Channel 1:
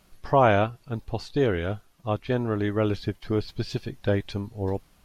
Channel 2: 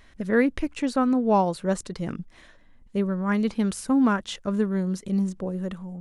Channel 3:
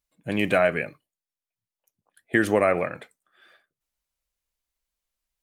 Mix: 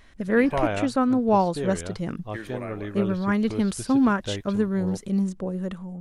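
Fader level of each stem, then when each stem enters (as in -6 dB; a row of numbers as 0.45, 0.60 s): -7.5, +0.5, -16.0 dB; 0.20, 0.00, 0.00 s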